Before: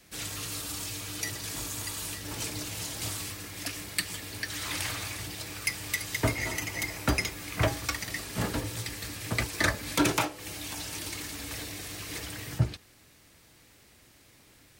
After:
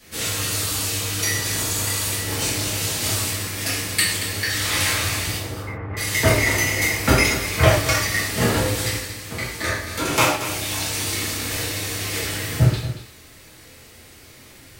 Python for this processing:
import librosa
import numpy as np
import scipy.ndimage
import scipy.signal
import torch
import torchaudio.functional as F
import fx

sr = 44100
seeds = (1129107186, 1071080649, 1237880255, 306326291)

y = fx.lowpass(x, sr, hz=1300.0, slope=24, at=(5.37, 5.97))
y = fx.comb_fb(y, sr, f0_hz=82.0, decay_s=1.8, harmonics='all', damping=0.0, mix_pct=70, at=(8.97, 10.12))
y = y + 10.0 ** (-12.0 / 20.0) * np.pad(y, (int(230 * sr / 1000.0), 0))[:len(y)]
y = fx.rev_gated(y, sr, seeds[0], gate_ms=190, shape='falling', drr_db=-7.5)
y = y * librosa.db_to_amplitude(4.0)